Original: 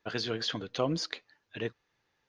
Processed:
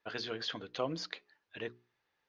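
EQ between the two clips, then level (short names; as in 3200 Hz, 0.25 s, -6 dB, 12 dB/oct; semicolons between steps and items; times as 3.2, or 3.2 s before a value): air absorption 92 m; low shelf 310 Hz -8 dB; notches 60/120/180/240/300/360/420 Hz; -2.5 dB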